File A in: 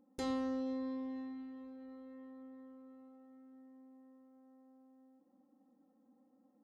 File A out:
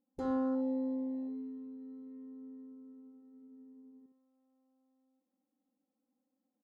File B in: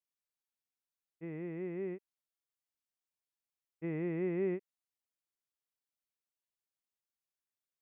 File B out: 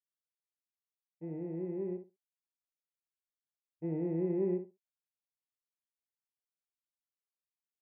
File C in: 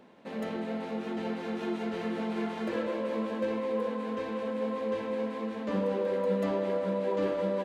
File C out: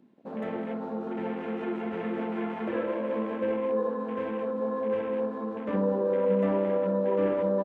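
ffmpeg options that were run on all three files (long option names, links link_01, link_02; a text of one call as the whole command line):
ffmpeg -i in.wav -filter_complex "[0:a]afwtdn=0.00631,acrossover=split=3300[link_01][link_02];[link_02]alimiter=level_in=31.5dB:limit=-24dB:level=0:latency=1:release=129,volume=-31.5dB[link_03];[link_01][link_03]amix=inputs=2:normalize=0,asplit=2[link_04][link_05];[link_05]adelay=61,lowpass=frequency=2100:poles=1,volume=-8dB,asplit=2[link_06][link_07];[link_07]adelay=61,lowpass=frequency=2100:poles=1,volume=0.18,asplit=2[link_08][link_09];[link_09]adelay=61,lowpass=frequency=2100:poles=1,volume=0.18[link_10];[link_04][link_06][link_08][link_10]amix=inputs=4:normalize=0,volume=1.5dB" out.wav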